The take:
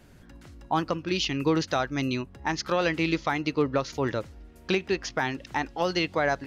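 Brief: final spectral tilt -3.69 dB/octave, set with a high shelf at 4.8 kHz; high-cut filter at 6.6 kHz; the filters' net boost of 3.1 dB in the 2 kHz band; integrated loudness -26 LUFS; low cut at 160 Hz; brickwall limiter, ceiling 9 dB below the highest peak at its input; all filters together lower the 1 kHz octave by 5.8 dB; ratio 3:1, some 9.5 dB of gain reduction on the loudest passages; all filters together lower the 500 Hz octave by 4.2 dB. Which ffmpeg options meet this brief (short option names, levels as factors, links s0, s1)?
-af "highpass=160,lowpass=6600,equalizer=f=500:t=o:g=-3.5,equalizer=f=1000:t=o:g=-8.5,equalizer=f=2000:t=o:g=5,highshelf=f=4800:g=8,acompressor=threshold=0.02:ratio=3,volume=4.22,alimiter=limit=0.211:level=0:latency=1"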